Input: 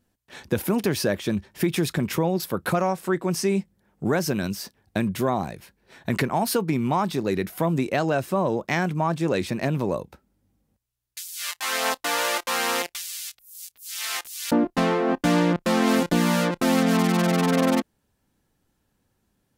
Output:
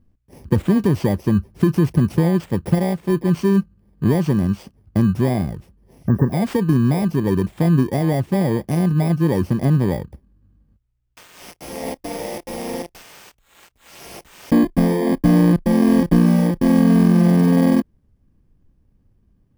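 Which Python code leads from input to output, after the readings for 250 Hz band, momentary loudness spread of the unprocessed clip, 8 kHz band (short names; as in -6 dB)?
+8.0 dB, 10 LU, -7.0 dB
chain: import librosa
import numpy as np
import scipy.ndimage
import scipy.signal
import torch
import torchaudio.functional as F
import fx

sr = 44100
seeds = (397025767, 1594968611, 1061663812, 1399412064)

y = fx.bit_reversed(x, sr, seeds[0], block=32)
y = fx.spec_repair(y, sr, seeds[1], start_s=5.99, length_s=0.31, low_hz=1900.0, high_hz=12000.0, source='before')
y = fx.tilt_eq(y, sr, slope=-4.0)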